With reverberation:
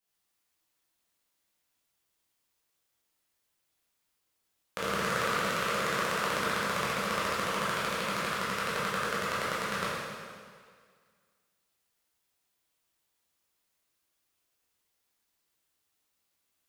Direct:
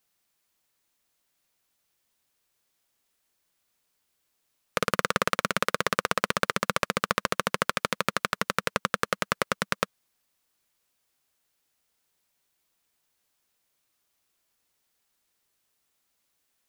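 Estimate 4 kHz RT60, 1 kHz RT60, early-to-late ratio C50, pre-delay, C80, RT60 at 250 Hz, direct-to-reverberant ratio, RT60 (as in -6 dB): 1.8 s, 1.9 s, -3.0 dB, 7 ms, -0.5 dB, 1.8 s, -9.5 dB, 1.9 s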